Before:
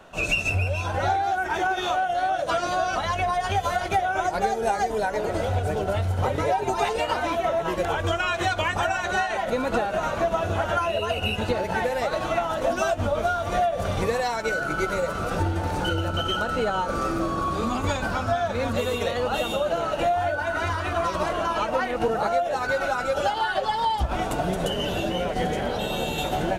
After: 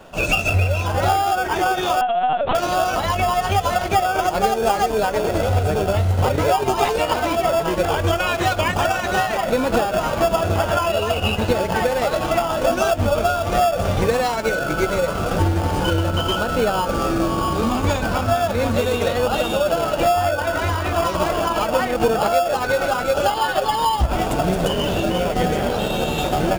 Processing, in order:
in parallel at −5 dB: decimation without filtering 22×
0:02.01–0:02.55: on the sum: linear-prediction vocoder at 8 kHz pitch kept
level +3 dB

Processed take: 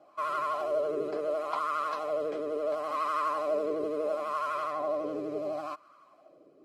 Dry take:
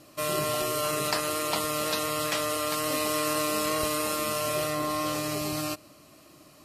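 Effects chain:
LFO wah 0.72 Hz 400–1,200 Hz, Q 4.2
pitch vibrato 12 Hz 73 cents
notch comb filter 920 Hz
level +7 dB

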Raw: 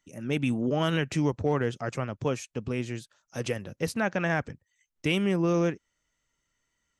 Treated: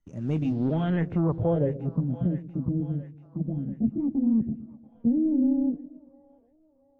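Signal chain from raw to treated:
pitch glide at a constant tempo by +10.5 semitones starting unshifted
spectral tilt −4.5 dB per octave
leveller curve on the samples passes 1
low-pass filter sweep 7,000 Hz → 250 Hz, 0:00.39–0:01.99
echo with a time of its own for lows and highs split 550 Hz, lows 115 ms, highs 687 ms, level −14.5 dB
level −9 dB

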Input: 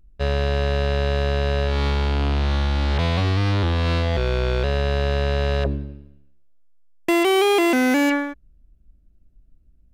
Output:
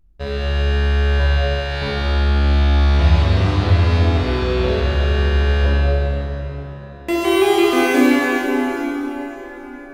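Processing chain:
0:01.19–0:01.82: high-pass filter 670 Hz 24 dB per octave
convolution reverb RT60 4.9 s, pre-delay 3 ms, DRR −6.5 dB
level −4 dB

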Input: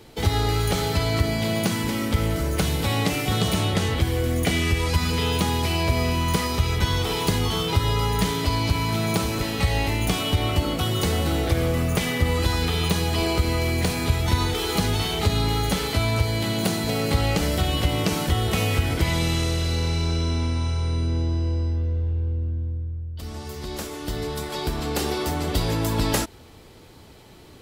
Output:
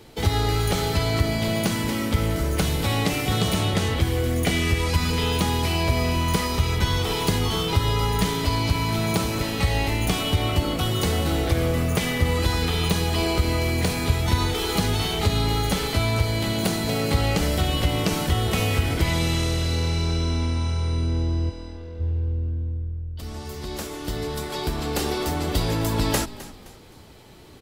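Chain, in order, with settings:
0:21.49–0:21.99: high-pass filter 970 Hz → 320 Hz 6 dB per octave
echo with shifted repeats 260 ms, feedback 37%, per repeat −40 Hz, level −16.5 dB

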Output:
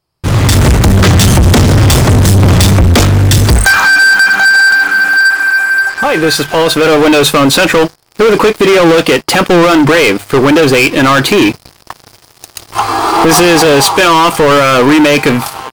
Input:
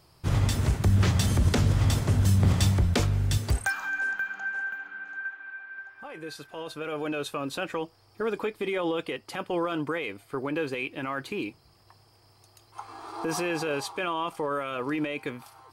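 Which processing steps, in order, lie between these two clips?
mains-hum notches 50/100/150 Hz
automatic gain control gain up to 16 dB
leveller curve on the samples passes 5
level −1.5 dB

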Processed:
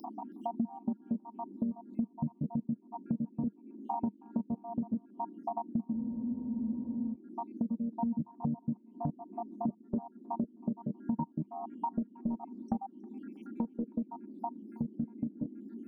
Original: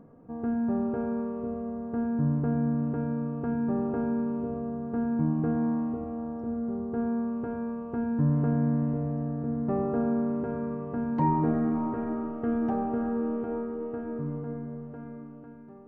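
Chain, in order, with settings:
time-frequency cells dropped at random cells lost 83%
upward compression, threshold −35 dBFS
noise in a band 220–390 Hz −58 dBFS
drawn EQ curve 130 Hz 0 dB, 200 Hz +15 dB, 430 Hz −4 dB, 930 Hz +8 dB, 1,500 Hz −29 dB, 3,600 Hz −15 dB
downward compressor 12 to 1, threshold −35 dBFS, peak gain reduction 21 dB
notch filter 450 Hz, Q 12
on a send: delay with a high-pass on its return 319 ms, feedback 42%, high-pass 1,500 Hz, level −18 dB
on the sum: frozen spectrum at 0:05.95, 1.18 s
one half of a high-frequency compander encoder only
level +4.5 dB

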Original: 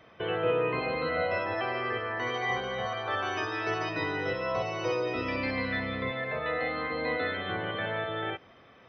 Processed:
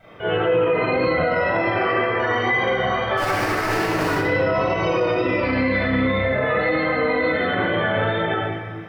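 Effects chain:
0:03.17–0:04.15: sample-rate reduction 3,500 Hz, jitter 20%
tape wow and flutter 32 cents
0:01.28–0:01.90: flutter between parallel walls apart 4.6 metres, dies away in 0.28 s
convolution reverb RT60 1.5 s, pre-delay 23 ms, DRR −10 dB
brickwall limiter −11 dBFS, peak gain reduction 7.5 dB
bit reduction 11 bits
high-shelf EQ 4,200 Hz −8.5 dB

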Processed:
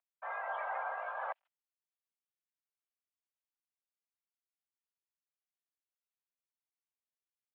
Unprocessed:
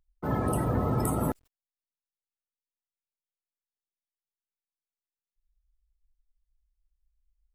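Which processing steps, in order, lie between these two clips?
pitch shifter swept by a sawtooth +1 semitone, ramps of 207 ms
single-sideband voice off tune +270 Hz 390–2,900 Hz
level −4.5 dB

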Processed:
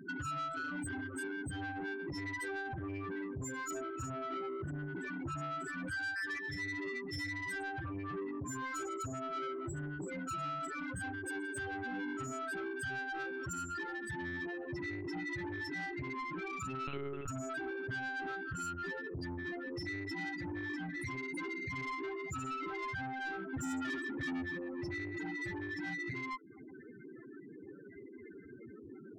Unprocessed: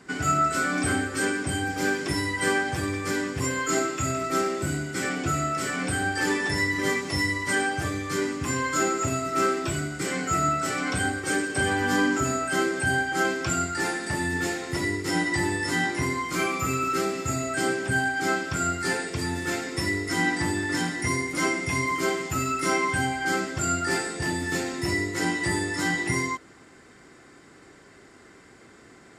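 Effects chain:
0:05.88–0:06.39: flat-topped bell 1,700 Hz +11.5 dB
downward compressor 4 to 1, threshold −40 dBFS, peak gain reduction 22 dB
0:23.53–0:24.42: hollow resonant body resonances 260/1,200/1,800 Hz, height 13 dB, ringing for 65 ms
spectral peaks only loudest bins 8
soft clipping −39.5 dBFS, distortion −13 dB
0:16.87–0:17.28: one-pitch LPC vocoder at 8 kHz 140 Hz
level +4.5 dB

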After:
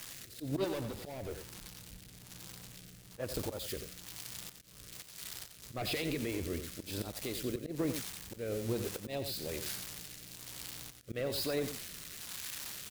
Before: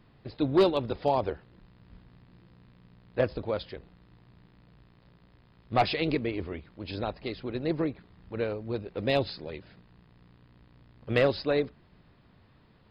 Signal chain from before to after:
spike at every zero crossing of −27 dBFS
volume swells 230 ms
brickwall limiter −26 dBFS, peak gain reduction 10 dB
0:00.64–0:03.20: hard clipping −35 dBFS, distortion −16 dB
rotating-speaker cabinet horn 1.1 Hz
single-tap delay 90 ms −9 dB
level +1 dB

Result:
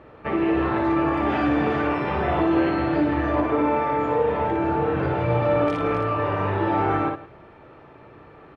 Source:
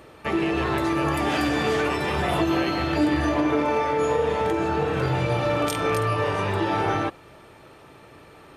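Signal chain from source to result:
low-pass filter 1,900 Hz 12 dB per octave
multi-tap delay 58/164 ms −3.5/−16 dB

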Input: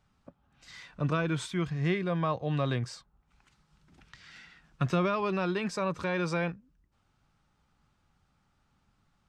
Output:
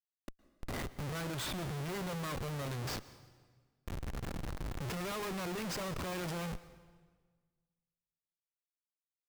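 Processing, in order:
healed spectral selection 0:03.89–0:04.84, 1,000–4,400 Hz after
comparator with hysteresis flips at −44 dBFS
on a send: convolution reverb RT60 1.5 s, pre-delay 108 ms, DRR 16 dB
on the sum: level −4.5 dB

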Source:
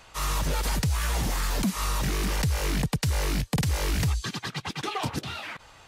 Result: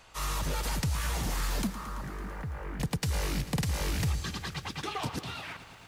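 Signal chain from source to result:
0:01.67–0:02.80: transistor ladder low-pass 2,000 Hz, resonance 30%
feedback echo at a low word length 111 ms, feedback 80%, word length 9 bits, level −14 dB
level −4.5 dB

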